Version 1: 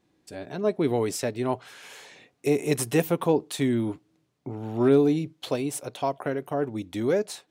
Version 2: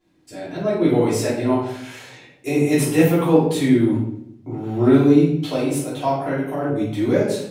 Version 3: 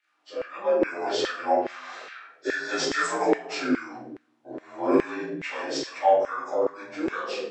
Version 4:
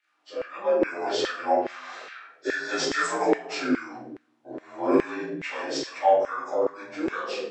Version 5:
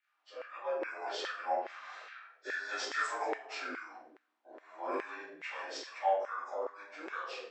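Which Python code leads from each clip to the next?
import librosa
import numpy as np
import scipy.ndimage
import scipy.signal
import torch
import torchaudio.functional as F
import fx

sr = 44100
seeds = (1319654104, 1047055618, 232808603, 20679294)

y1 = fx.room_shoebox(x, sr, seeds[0], volume_m3=170.0, walls='mixed', distance_m=3.1)
y1 = y1 * 10.0 ** (-4.5 / 20.0)
y2 = fx.partial_stretch(y1, sr, pct=84)
y2 = fx.filter_lfo_highpass(y2, sr, shape='saw_down', hz=2.4, low_hz=420.0, high_hz=1900.0, q=2.3)
y2 = y2 * 10.0 ** (-1.0 / 20.0)
y3 = y2
y4 = scipy.signal.sosfilt(scipy.signal.butter(2, 750.0, 'highpass', fs=sr, output='sos'), y3)
y4 = fx.high_shelf(y4, sr, hz=4100.0, db=-8.0)
y4 = y4 * 10.0 ** (-6.0 / 20.0)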